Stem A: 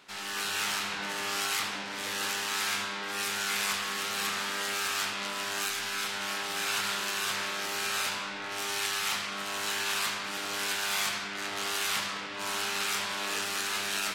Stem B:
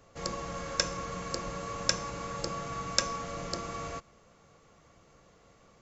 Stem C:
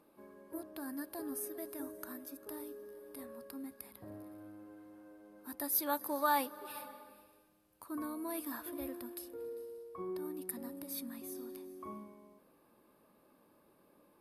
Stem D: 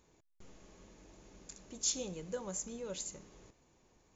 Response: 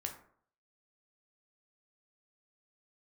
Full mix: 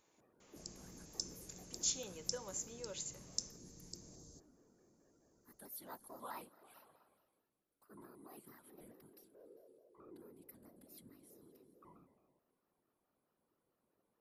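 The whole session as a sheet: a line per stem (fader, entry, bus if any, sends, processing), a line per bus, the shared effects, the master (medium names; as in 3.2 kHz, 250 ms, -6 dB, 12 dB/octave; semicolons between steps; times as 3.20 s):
mute
-16.5 dB, 0.40 s, no send, inverse Chebyshev band-stop 860–2200 Hz, stop band 60 dB; treble shelf 3.4 kHz +8.5 dB
-17.0 dB, 0.00 s, no send, whisper effect; vibrato with a chosen wave square 4.6 Hz, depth 160 cents
-2.5 dB, 0.00 s, no send, high-pass 590 Hz 6 dB/octave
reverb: none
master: none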